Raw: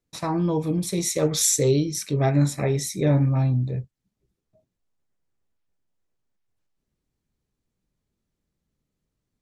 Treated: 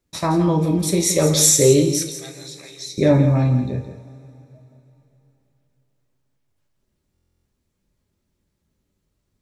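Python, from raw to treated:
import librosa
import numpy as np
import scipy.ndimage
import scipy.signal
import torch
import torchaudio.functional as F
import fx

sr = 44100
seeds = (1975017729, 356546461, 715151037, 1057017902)

y = fx.bandpass_q(x, sr, hz=4200.0, q=3.7, at=(2.04, 2.98))
y = y + 10.0 ** (-10.5 / 20.0) * np.pad(y, (int(168 * sr / 1000.0), 0))[:len(y)]
y = fx.rev_double_slope(y, sr, seeds[0], early_s=0.31, late_s=3.4, knee_db=-22, drr_db=4.5)
y = fx.buffer_glitch(y, sr, at_s=(7.13,), block=1024, repeats=13)
y = y * 10.0 ** (5.5 / 20.0)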